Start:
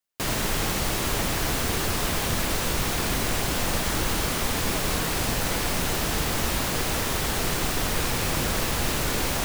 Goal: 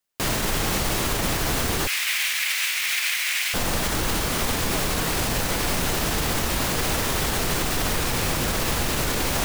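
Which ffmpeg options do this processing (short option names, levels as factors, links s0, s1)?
-filter_complex "[0:a]alimiter=limit=0.119:level=0:latency=1:release=48,asettb=1/sr,asplit=3[s0][s1][s2];[s0]atrim=end=1.874[s3];[s1]atrim=start=1.87:end=3.54,asetpts=PTS-STARTPTS,afade=t=in:d=0.004:c=qsin,afade=t=out:st=1.666:d=0.004:c=qsin,highpass=f=2200:t=q:w=2.9[s4];[s2]atrim=start=3.536[s5];[s3][s4]acrossfade=d=0.004:c1=hsin:c2=qsin[s6];[s6][s5]acrossfade=d=0.004:c1=qsin:c2=hsin,aeval=exprs='0.158*(cos(1*acos(clip(val(0)/0.158,-1,1)))-cos(1*PI/2))+0.00112*(cos(4*acos(clip(val(0)/0.158,-1,1)))-cos(4*PI/2))':c=same,volume=1.68"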